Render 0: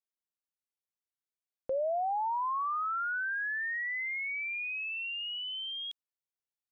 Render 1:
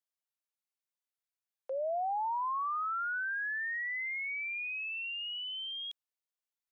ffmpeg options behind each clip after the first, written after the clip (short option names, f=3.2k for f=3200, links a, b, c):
-af "highpass=f=540:w=0.5412,highpass=f=540:w=1.3066,volume=-1.5dB"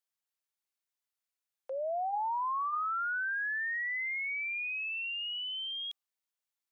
-af "lowshelf=f=350:g=-10.5,bandreject=f=394:t=h:w=4,bandreject=f=788:t=h:w=4,bandreject=f=1.182k:t=h:w=4,volume=2dB"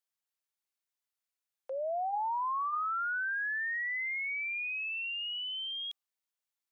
-af anull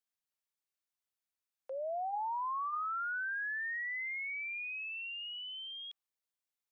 -filter_complex "[0:a]acrossover=split=3300[a][b];[b]acompressor=threshold=-55dB:ratio=4:attack=1:release=60[c];[a][c]amix=inputs=2:normalize=0,volume=-3.5dB"